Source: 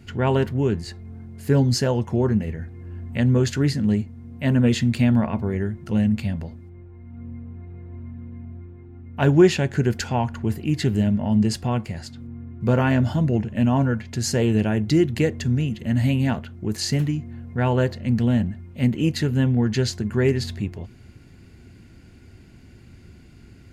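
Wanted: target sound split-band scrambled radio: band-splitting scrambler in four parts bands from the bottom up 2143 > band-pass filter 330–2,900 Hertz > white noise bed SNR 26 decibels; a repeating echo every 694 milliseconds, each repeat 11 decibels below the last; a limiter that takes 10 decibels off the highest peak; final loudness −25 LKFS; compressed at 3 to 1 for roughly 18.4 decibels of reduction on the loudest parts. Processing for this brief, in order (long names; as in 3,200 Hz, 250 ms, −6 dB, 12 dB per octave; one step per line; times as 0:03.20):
downward compressor 3 to 1, threshold −35 dBFS
brickwall limiter −30 dBFS
repeating echo 694 ms, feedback 28%, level −11 dB
band-splitting scrambler in four parts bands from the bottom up 2143
band-pass filter 330–2,900 Hz
white noise bed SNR 26 dB
level +12 dB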